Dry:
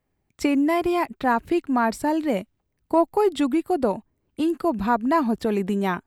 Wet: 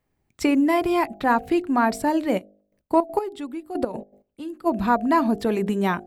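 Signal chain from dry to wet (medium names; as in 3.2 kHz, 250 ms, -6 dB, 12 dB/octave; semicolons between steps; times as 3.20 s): de-hum 50.86 Hz, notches 16; 2.37–4.65 s: trance gate "x......x.x." 160 bpm -12 dB; trim +1.5 dB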